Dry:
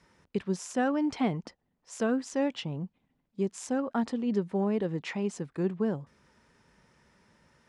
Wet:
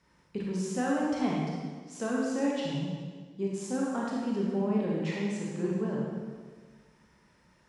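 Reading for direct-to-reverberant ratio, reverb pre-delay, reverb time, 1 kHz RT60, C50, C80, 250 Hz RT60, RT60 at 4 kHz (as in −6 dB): −4.0 dB, 25 ms, 1.5 s, 1.5 s, −1.5 dB, 1.0 dB, 1.5 s, 1.4 s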